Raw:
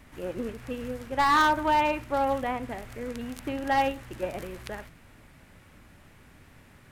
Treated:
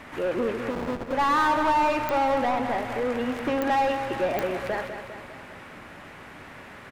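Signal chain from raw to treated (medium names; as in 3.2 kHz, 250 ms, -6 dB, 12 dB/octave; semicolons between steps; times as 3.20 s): 0.70–1.13 s: Schmitt trigger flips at -34.5 dBFS; overdrive pedal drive 24 dB, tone 1.4 kHz, clips at -16.5 dBFS; feedback delay 201 ms, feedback 55%, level -9 dB; clicks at 2.09/3.62/4.39 s, -13 dBFS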